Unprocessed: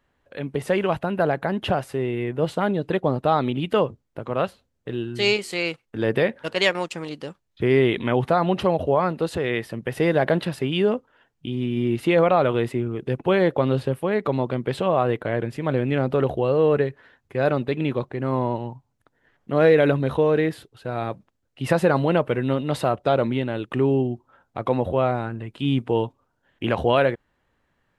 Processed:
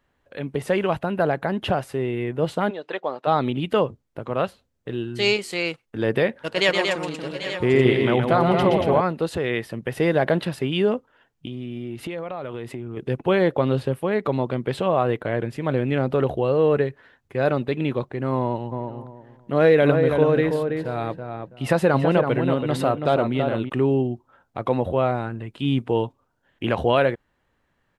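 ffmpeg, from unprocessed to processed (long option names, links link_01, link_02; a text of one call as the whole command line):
ffmpeg -i in.wav -filter_complex "[0:a]asplit=3[link_01][link_02][link_03];[link_01]afade=type=out:start_time=2.69:duration=0.02[link_04];[link_02]highpass=600,lowpass=5600,afade=type=in:start_time=2.69:duration=0.02,afade=type=out:start_time=3.26:duration=0.02[link_05];[link_03]afade=type=in:start_time=3.26:duration=0.02[link_06];[link_04][link_05][link_06]amix=inputs=3:normalize=0,asettb=1/sr,asplit=3[link_07][link_08][link_09];[link_07]atrim=end=6.404[link_10];[link_08]atrim=start=6.4:end=9.01,asetpts=PTS-STARTPTS,afade=type=in:duration=0.004:curve=qsin,afade=type=out:start_time=2.606:duration=0.004:curve=qsin,aecho=1:1:121|232|790|799|850|879:0.531|0.562|0.2|0.178|0.119|0.251,atrim=end_sample=115101[link_11];[link_09]atrim=start=9.006[link_12];[link_10][link_11]acrossfade=duration=0.004:curve1=hsin:curve2=qsin[link_13];[link_13][link_12]acrossfade=duration=0.004:curve1=qsin:curve2=hsin,asettb=1/sr,asplit=3[link_14][link_15][link_16];[link_14]atrim=end=11.464[link_17];[link_15]atrim=start=11.46:end=12.97,asetpts=PTS-STARTPTS,afade=type=in:duration=0.004:curve=qsin,afade=type=out:start_time=1.506:duration=0.004:curve=qsin,acompressor=threshold=-28dB:ratio=6:attack=3.2:release=140:knee=1:detection=peak[link_18];[link_16]atrim=start=12.966[link_19];[link_17][link_18]acrossfade=duration=0.004:curve1=hsin:curve2=qsin[link_20];[link_20][link_19]acrossfade=duration=0.004:curve1=qsin:curve2=hsin,asplit=3[link_21][link_22][link_23];[link_21]afade=type=out:start_time=18.71:duration=0.02[link_24];[link_22]asplit=2[link_25][link_26];[link_26]adelay=328,lowpass=frequency=1900:poles=1,volume=-5dB,asplit=2[link_27][link_28];[link_28]adelay=328,lowpass=frequency=1900:poles=1,volume=0.22,asplit=2[link_29][link_30];[link_30]adelay=328,lowpass=frequency=1900:poles=1,volume=0.22[link_31];[link_25][link_27][link_29][link_31]amix=inputs=4:normalize=0,afade=type=in:start_time=18.71:duration=0.02,afade=type=out:start_time=23.68:duration=0.02[link_32];[link_23]afade=type=in:start_time=23.68:duration=0.02[link_33];[link_24][link_32][link_33]amix=inputs=3:normalize=0" out.wav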